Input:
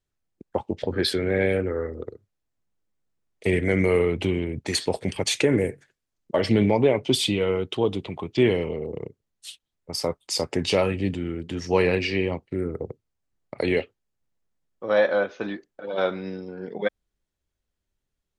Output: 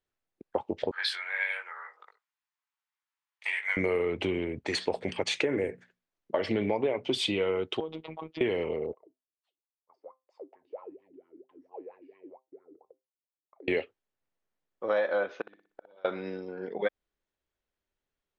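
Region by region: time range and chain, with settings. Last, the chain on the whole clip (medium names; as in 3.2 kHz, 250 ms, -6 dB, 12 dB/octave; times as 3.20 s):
0.91–3.77 s: Chebyshev high-pass 910 Hz, order 4 + doubling 19 ms -5 dB
4.59–7.18 s: treble shelf 9.9 kHz -9.5 dB + hum notches 60/120/180/240 Hz
7.80–8.41 s: distance through air 170 m + compression, threshold -28 dBFS + robot voice 159 Hz
8.93–13.68 s: compression 1.5:1, threshold -31 dBFS + wah-wah 4.4 Hz 280–1100 Hz, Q 18 + feedback comb 130 Hz, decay 0.23 s, mix 40%
15.41–16.05 s: compression 3:1, threshold -27 dBFS + inverted gate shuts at -28 dBFS, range -27 dB + flutter echo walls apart 10.3 m, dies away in 0.42 s
whole clip: low-pass 8.7 kHz 12 dB/octave; tone controls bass -11 dB, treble -8 dB; compression, threshold -24 dBFS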